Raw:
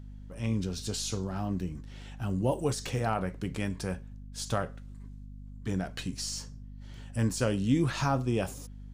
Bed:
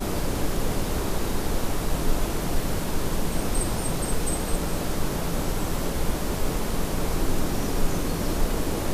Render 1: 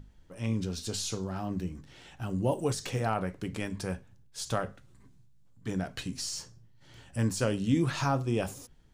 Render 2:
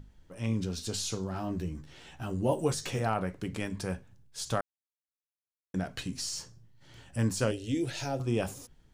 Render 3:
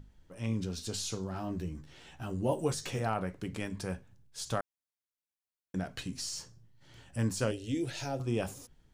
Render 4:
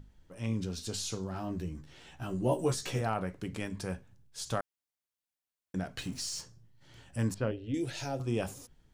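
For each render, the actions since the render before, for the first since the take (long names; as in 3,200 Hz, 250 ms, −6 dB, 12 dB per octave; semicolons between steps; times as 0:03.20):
mains-hum notches 50/100/150/200/250 Hz
0:01.33–0:02.99: double-tracking delay 13 ms −6.5 dB; 0:04.61–0:05.74: silence; 0:07.51–0:08.20: phaser with its sweep stopped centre 460 Hz, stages 4
level −2.5 dB
0:02.20–0:03.01: double-tracking delay 16 ms −5 dB; 0:05.98–0:06.41: converter with a step at zero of −49 dBFS; 0:07.34–0:07.74: high-frequency loss of the air 420 metres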